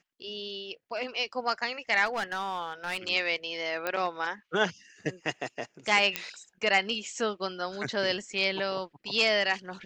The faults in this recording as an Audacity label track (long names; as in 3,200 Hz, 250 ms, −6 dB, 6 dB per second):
2.050000	2.980000	clipping −27 dBFS
3.870000	3.870000	click −15 dBFS
6.160000	6.160000	click −11 dBFS